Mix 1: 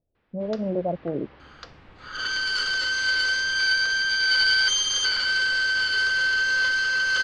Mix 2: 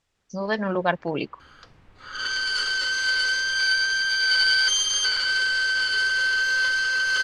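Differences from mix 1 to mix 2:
speech: remove Chebyshev low-pass 650 Hz, order 4; first sound -8.0 dB; master: remove low-pass 7 kHz 12 dB/octave

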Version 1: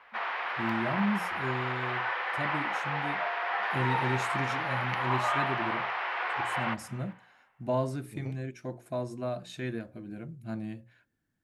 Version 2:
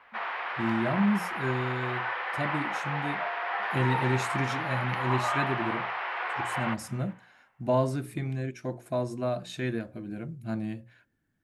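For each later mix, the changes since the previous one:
first voice +4.0 dB; second voice -8.5 dB; background: add treble shelf 6.8 kHz -8.5 dB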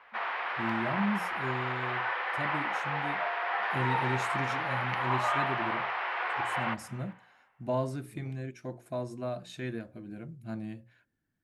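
first voice -5.5 dB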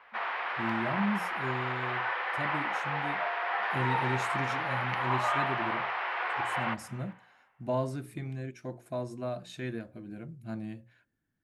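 second voice -5.0 dB

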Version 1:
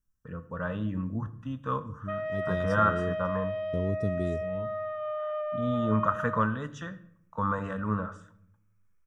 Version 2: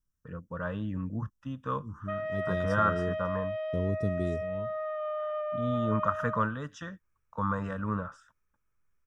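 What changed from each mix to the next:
first voice: remove band-stop 5.2 kHz, Q 5.5; reverb: off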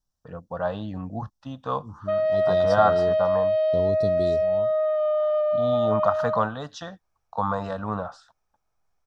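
master: remove static phaser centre 1.8 kHz, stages 4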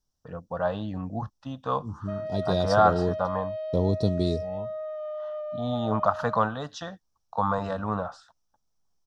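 second voice +5.0 dB; background -11.5 dB

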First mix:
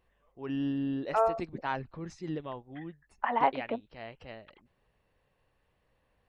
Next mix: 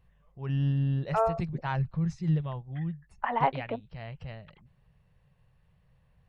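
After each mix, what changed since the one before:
first voice: add resonant low shelf 210 Hz +9.5 dB, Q 3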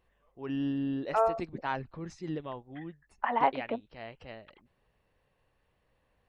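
first voice: add resonant low shelf 210 Hz -9.5 dB, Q 3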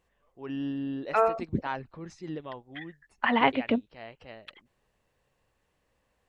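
first voice: add bass shelf 140 Hz -5 dB; second voice: remove band-pass filter 790 Hz, Q 1.5

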